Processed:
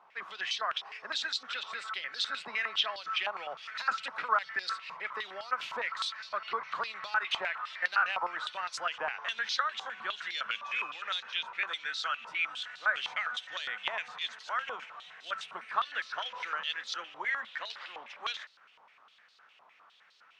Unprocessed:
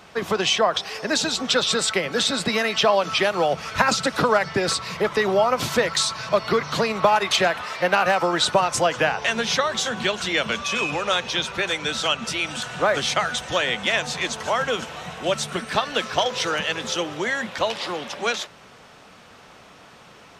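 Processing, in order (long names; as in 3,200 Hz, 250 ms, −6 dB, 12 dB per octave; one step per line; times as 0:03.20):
dynamic equaliser 1,500 Hz, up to +4 dB, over −34 dBFS, Q 1.2
band-pass on a step sequencer 9.8 Hz 960–4,200 Hz
level −4.5 dB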